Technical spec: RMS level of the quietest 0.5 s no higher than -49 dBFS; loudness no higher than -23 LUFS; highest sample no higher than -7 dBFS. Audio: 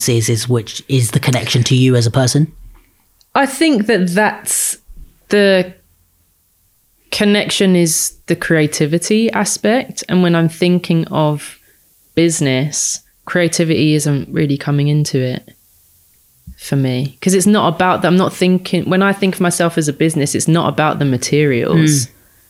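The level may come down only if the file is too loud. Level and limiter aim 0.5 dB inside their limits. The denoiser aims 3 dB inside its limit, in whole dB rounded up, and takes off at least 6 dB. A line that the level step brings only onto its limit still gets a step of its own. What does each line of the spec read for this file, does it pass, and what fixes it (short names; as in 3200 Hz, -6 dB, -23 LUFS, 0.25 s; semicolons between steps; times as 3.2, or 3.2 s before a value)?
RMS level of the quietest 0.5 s -57 dBFS: OK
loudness -14.5 LUFS: fail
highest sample -2.0 dBFS: fail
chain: gain -9 dB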